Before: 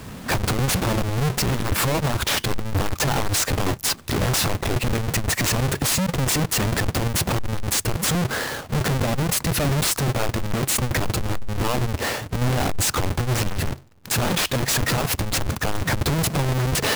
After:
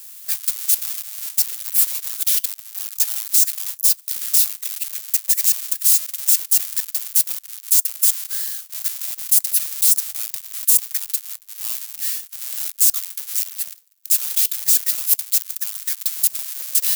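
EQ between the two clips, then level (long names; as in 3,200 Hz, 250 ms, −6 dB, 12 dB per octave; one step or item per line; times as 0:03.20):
first-order pre-emphasis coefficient 0.97
spectral tilt +4 dB per octave
low-shelf EQ 200 Hz −3 dB
−6.5 dB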